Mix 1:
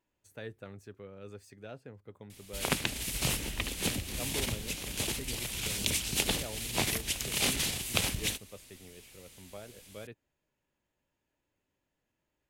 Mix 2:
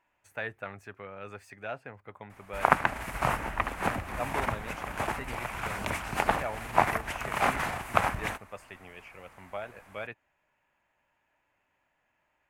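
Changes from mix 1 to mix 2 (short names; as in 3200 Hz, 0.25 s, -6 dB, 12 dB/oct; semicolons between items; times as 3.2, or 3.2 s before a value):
background: add resonant high shelf 1900 Hz -12.5 dB, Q 1.5; master: add band shelf 1300 Hz +13.5 dB 2.4 oct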